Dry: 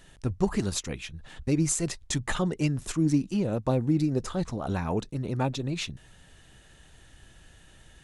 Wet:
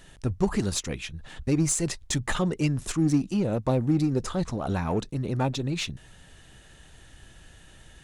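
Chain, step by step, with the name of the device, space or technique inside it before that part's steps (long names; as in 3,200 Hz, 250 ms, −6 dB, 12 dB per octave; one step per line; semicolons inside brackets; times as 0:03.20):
parallel distortion (in parallel at −8 dB: hard clipping −30 dBFS, distortion −5 dB)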